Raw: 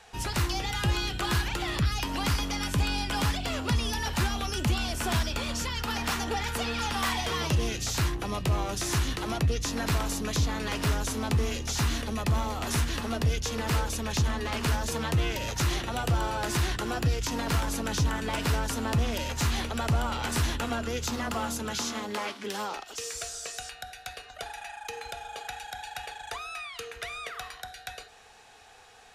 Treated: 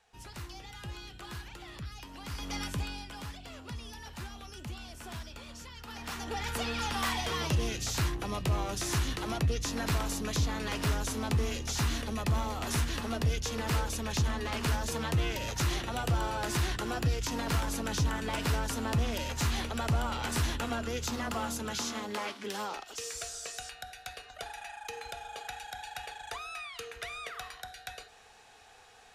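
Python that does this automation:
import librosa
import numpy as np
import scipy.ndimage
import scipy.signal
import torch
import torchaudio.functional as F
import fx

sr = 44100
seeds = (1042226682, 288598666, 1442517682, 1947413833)

y = fx.gain(x, sr, db=fx.line((2.25, -15.5), (2.56, -4.0), (3.16, -15.0), (5.79, -15.0), (6.51, -3.0)))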